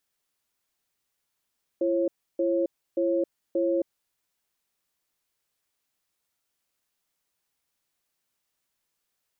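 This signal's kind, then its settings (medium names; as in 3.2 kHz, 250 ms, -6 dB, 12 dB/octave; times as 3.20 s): cadence 339 Hz, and 543 Hz, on 0.27 s, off 0.31 s, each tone -24.5 dBFS 2.06 s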